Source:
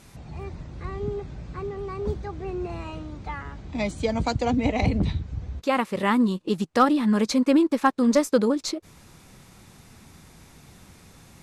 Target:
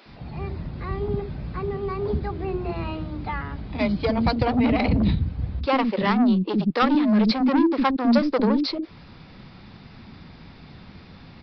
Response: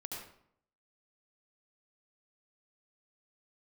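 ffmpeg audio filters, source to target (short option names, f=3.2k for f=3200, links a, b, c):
-filter_complex "[0:a]equalizer=f=240:w=1.1:g=5,aresample=11025,asoftclip=type=tanh:threshold=-18dB,aresample=44100,acrossover=split=340[a][b];[a]adelay=60[c];[c][b]amix=inputs=2:normalize=0,volume=4.5dB"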